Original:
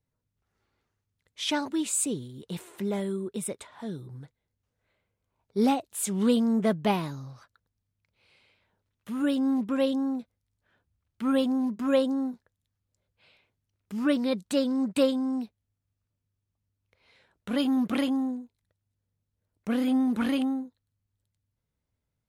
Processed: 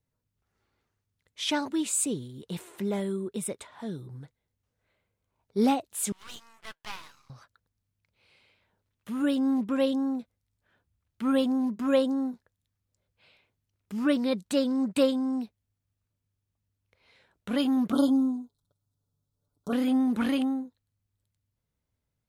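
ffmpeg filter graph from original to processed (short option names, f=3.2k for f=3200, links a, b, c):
-filter_complex "[0:a]asettb=1/sr,asplit=3[a][b][c];[a]atrim=end=6.124[d];[b]atrim=start=6.12:end=7.3,asetpts=PTS-STARTPTS,afade=t=in:d=0.004:c=qsin,afade=t=out:st=1.176:d=0.004:c=qsin,highpass=f=1.1k:w=0.5412,highpass=f=1.1k:w=1.3066,highshelf=f=7.6k:g=-7.5,aeval=exprs='max(val(0),0)':c=same[e];[c]atrim=start=7.296[f];[d][e]acrossfade=d=0.004:c1=hsin:c2=qsin[g];[g][f]acrossfade=d=0.004:c1=qsin:c2=hsin,asettb=1/sr,asplit=3[h][i][j];[h]atrim=end=17.924[k];[i]atrim=start=17.92:end=19.73,asetpts=PTS-STARTPTS,afade=t=in:d=0.004:c=qsin,afade=t=out:st=1.806:d=0.004:c=qsin,asuperstop=centerf=2200:order=12:qfactor=1.2,aecho=1:1:7:0.74,atrim=end_sample=79821[l];[j]atrim=start=19.726[m];[k][l]acrossfade=d=0.004:c1=hsin:c2=qsin[n];[n][m]acrossfade=d=0.004:c1=qsin:c2=hsin"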